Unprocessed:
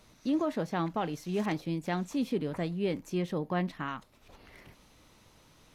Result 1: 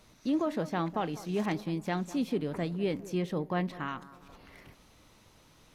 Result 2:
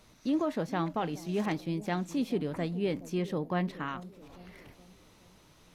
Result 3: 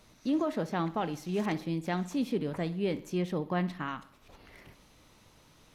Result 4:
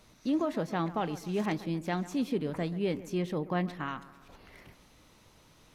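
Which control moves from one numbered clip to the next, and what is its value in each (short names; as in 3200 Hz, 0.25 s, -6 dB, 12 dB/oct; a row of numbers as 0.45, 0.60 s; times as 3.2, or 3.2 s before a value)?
analogue delay, time: 201, 421, 61, 135 ms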